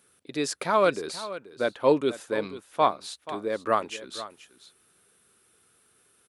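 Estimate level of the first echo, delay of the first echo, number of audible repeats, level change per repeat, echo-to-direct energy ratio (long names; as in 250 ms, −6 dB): −14.5 dB, 482 ms, 1, repeats not evenly spaced, −14.5 dB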